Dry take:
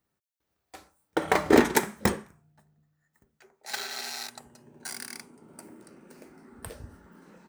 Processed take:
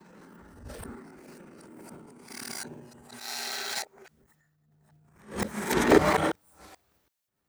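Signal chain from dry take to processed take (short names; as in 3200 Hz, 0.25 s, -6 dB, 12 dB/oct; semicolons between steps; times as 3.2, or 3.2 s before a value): whole clip reversed; transient shaper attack -11 dB, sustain +8 dB; gain +2 dB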